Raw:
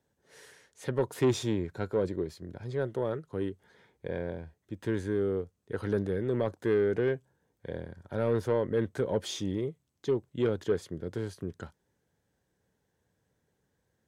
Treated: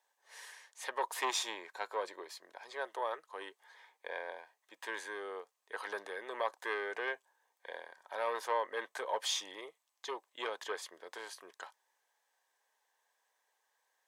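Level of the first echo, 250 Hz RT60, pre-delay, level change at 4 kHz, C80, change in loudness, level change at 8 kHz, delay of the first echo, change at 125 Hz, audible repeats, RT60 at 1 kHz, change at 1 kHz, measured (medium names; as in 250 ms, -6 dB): no echo, no reverb, no reverb, +3.5 dB, no reverb, -7.5 dB, +3.0 dB, no echo, under -40 dB, no echo, no reverb, +5.0 dB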